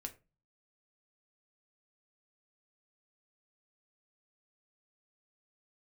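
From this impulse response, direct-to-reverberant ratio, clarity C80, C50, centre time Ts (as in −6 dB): 4.5 dB, 22.5 dB, 16.5 dB, 7 ms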